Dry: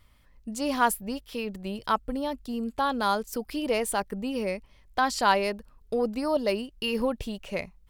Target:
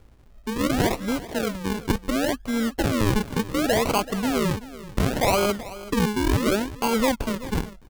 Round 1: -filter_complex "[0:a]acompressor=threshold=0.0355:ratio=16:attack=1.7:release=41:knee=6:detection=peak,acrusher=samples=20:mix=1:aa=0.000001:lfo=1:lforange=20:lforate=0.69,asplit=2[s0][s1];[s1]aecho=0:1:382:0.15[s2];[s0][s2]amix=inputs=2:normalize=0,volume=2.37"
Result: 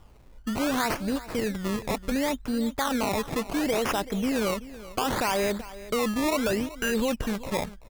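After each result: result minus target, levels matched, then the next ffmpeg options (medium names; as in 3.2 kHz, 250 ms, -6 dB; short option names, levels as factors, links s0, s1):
decimation with a swept rate: distortion -11 dB; compression: peak gain reduction +6 dB
-filter_complex "[0:a]acompressor=threshold=0.0355:ratio=16:attack=1.7:release=41:knee=6:detection=peak,acrusher=samples=47:mix=1:aa=0.000001:lfo=1:lforange=47:lforate=0.69,asplit=2[s0][s1];[s1]aecho=0:1:382:0.15[s2];[s0][s2]amix=inputs=2:normalize=0,volume=2.37"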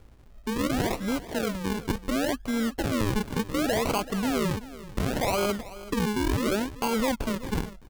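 compression: peak gain reduction +6 dB
-filter_complex "[0:a]acompressor=threshold=0.075:ratio=16:attack=1.7:release=41:knee=6:detection=peak,acrusher=samples=47:mix=1:aa=0.000001:lfo=1:lforange=47:lforate=0.69,asplit=2[s0][s1];[s1]aecho=0:1:382:0.15[s2];[s0][s2]amix=inputs=2:normalize=0,volume=2.37"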